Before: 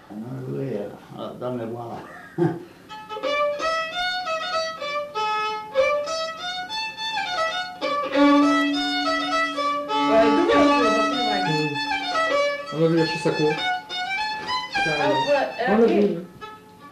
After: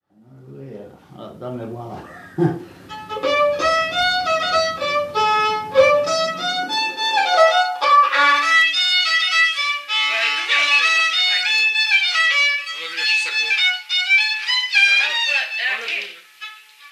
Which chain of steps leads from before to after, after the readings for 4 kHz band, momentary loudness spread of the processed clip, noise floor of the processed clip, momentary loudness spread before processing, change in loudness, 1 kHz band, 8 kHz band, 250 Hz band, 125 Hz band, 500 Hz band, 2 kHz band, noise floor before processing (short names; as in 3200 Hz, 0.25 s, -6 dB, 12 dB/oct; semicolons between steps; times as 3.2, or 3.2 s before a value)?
+10.0 dB, 18 LU, -45 dBFS, 15 LU, +6.5 dB, +4.0 dB, +7.5 dB, -9.5 dB, -2.0 dB, +0.5 dB, +10.5 dB, -44 dBFS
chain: opening faded in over 4.04 s; high-pass sweep 77 Hz -> 2400 Hz, 5.6–8.69; gain +7 dB